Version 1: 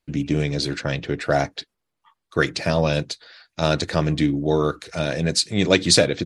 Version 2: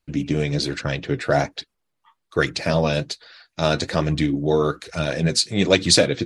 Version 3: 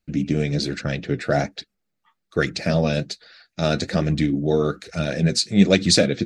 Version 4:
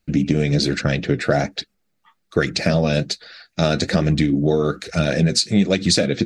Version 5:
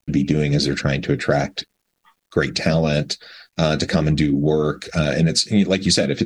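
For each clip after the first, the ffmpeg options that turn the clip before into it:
ffmpeg -i in.wav -af "flanger=delay=0.7:depth=8.1:regen=53:speed=1.2:shape=sinusoidal,volume=4.5dB" out.wav
ffmpeg -i in.wav -af "equalizer=frequency=200:width_type=o:width=0.33:gain=10,equalizer=frequency=1000:width_type=o:width=0.33:gain=-12,equalizer=frequency=3150:width_type=o:width=0.33:gain=-4,equalizer=frequency=10000:width_type=o:width=0.33:gain=-7,volume=-1dB" out.wav
ffmpeg -i in.wav -af "acompressor=threshold=-20dB:ratio=10,volume=7dB" out.wav
ffmpeg -i in.wav -af "acrusher=bits=10:mix=0:aa=0.000001" out.wav

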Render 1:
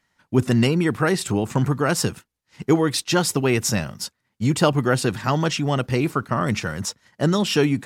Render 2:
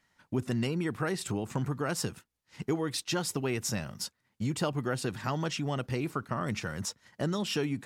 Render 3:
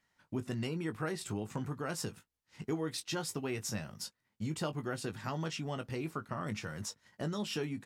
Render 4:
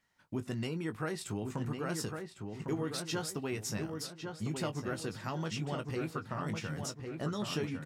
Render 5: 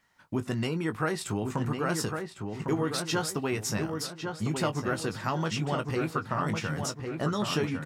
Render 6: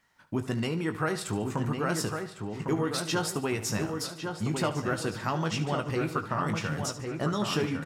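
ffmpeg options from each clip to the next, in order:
ffmpeg -i in.wav -af "acompressor=threshold=-34dB:ratio=2,volume=-2dB" out.wav
ffmpeg -i in.wav -filter_complex "[0:a]asplit=2[link_01][link_02];[link_02]adelay=19,volume=-9dB[link_03];[link_01][link_03]amix=inputs=2:normalize=0,volume=-6dB" out.wav
ffmpeg -i in.wav -filter_complex "[0:a]asplit=2[link_01][link_02];[link_02]adelay=1104,lowpass=frequency=2300:poles=1,volume=-5dB,asplit=2[link_03][link_04];[link_04]adelay=1104,lowpass=frequency=2300:poles=1,volume=0.4,asplit=2[link_05][link_06];[link_06]adelay=1104,lowpass=frequency=2300:poles=1,volume=0.4,asplit=2[link_07][link_08];[link_08]adelay=1104,lowpass=frequency=2300:poles=1,volume=0.4,asplit=2[link_09][link_10];[link_10]adelay=1104,lowpass=frequency=2300:poles=1,volume=0.4[link_11];[link_01][link_03][link_05][link_07][link_09][link_11]amix=inputs=6:normalize=0" out.wav
ffmpeg -i in.wav -af "equalizer=frequency=1100:width=1:gain=4,volume=6dB" out.wav
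ffmpeg -i in.wav -af "aecho=1:1:73|146|219|292|365:0.2|0.0998|0.0499|0.0249|0.0125" out.wav

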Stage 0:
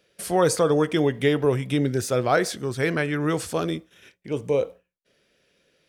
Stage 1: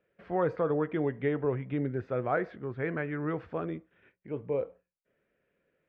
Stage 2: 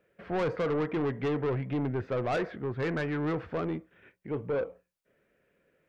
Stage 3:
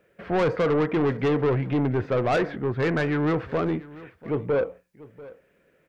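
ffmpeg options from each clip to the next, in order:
ffmpeg -i in.wav -af "lowpass=frequency=2100:width=0.5412,lowpass=frequency=2100:width=1.3066,volume=-8.5dB" out.wav
ffmpeg -i in.wav -af "asoftclip=type=tanh:threshold=-31dB,volume=5.5dB" out.wav
ffmpeg -i in.wav -af "aecho=1:1:690:0.106,volume=7dB" out.wav

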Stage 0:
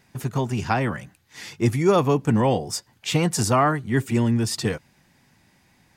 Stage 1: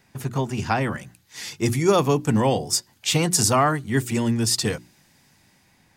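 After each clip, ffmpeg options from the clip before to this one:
ffmpeg -i in.wav -filter_complex "[0:a]bandreject=frequency=60:width_type=h:width=6,bandreject=frequency=120:width_type=h:width=6,bandreject=frequency=180:width_type=h:width=6,bandreject=frequency=240:width_type=h:width=6,bandreject=frequency=300:width_type=h:width=6,bandreject=frequency=360:width_type=h:width=6,acrossover=split=560|3600[link_01][link_02][link_03];[link_03]dynaudnorm=framelen=380:gausssize=5:maxgain=7.5dB[link_04];[link_01][link_02][link_04]amix=inputs=3:normalize=0" out.wav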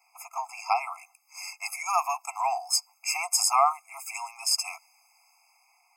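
ffmpeg -i in.wav -af "asuperstop=centerf=3600:order=20:qfactor=2.2,afftfilt=real='re*eq(mod(floor(b*sr/1024/680),2),1)':imag='im*eq(mod(floor(b*sr/1024/680),2),1)':win_size=1024:overlap=0.75" out.wav

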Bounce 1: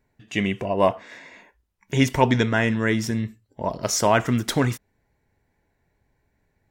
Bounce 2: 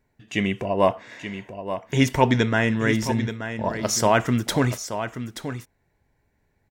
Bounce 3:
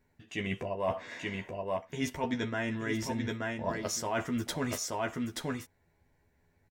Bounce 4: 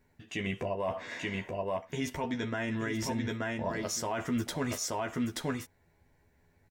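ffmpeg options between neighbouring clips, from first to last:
ffmpeg -i in.wav -af "aecho=1:1:879:0.316" out.wav
ffmpeg -i in.wav -filter_complex "[0:a]areverse,acompressor=threshold=-27dB:ratio=12,areverse,asplit=2[link_01][link_02];[link_02]adelay=12,volume=-4dB[link_03];[link_01][link_03]amix=inputs=2:normalize=0,volume=-3dB" out.wav
ffmpeg -i in.wav -af "alimiter=level_in=2.5dB:limit=-24dB:level=0:latency=1:release=123,volume=-2.5dB,volume=3dB" out.wav

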